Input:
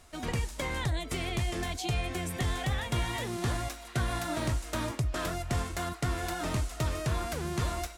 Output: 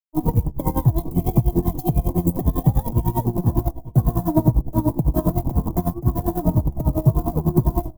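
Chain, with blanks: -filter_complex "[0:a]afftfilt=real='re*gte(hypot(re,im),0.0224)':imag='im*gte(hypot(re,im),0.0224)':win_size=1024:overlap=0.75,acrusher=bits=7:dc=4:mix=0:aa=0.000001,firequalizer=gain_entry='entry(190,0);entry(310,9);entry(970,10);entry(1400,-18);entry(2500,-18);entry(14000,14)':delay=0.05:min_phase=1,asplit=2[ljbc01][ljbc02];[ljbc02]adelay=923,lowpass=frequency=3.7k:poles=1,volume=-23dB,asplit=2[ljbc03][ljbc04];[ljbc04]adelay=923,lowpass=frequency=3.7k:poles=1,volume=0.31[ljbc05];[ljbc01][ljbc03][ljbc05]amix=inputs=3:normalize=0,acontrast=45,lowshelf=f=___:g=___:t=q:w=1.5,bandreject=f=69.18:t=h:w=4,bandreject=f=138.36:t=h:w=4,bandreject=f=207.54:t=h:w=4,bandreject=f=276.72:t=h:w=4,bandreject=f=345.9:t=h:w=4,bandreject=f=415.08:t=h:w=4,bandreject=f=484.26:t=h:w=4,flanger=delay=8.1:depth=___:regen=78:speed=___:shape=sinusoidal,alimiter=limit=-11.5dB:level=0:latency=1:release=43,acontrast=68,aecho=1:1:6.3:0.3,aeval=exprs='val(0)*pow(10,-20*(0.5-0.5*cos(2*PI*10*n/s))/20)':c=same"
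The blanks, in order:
300, 13, 7.1, 0.65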